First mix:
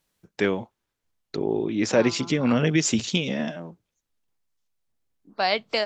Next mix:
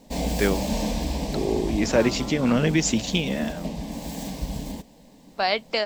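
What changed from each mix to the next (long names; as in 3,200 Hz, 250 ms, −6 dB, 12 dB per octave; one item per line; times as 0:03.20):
background: unmuted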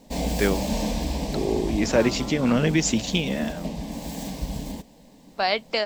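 nothing changed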